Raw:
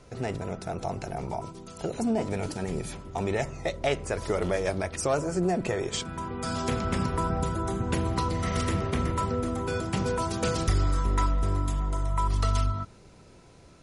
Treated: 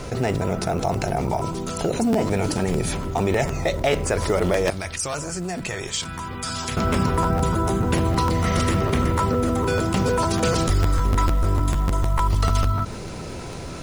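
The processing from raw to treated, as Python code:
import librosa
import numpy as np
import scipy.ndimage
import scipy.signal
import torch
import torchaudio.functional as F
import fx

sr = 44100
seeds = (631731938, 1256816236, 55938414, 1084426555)

y = fx.tone_stack(x, sr, knobs='5-5-5', at=(4.7, 6.77))
y = fx.quant_float(y, sr, bits=4)
y = fx.buffer_crackle(y, sr, first_s=0.47, period_s=0.15, block=512, kind='repeat')
y = fx.env_flatten(y, sr, amount_pct=50)
y = F.gain(torch.from_numpy(y), 4.0).numpy()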